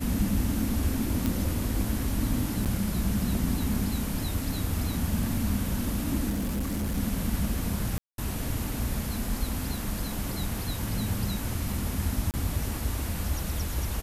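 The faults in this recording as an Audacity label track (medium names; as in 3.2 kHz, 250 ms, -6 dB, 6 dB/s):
1.260000	1.260000	pop
2.650000	2.660000	dropout 7.6 ms
6.290000	6.980000	clipped -26 dBFS
7.980000	8.180000	dropout 202 ms
12.310000	12.340000	dropout 28 ms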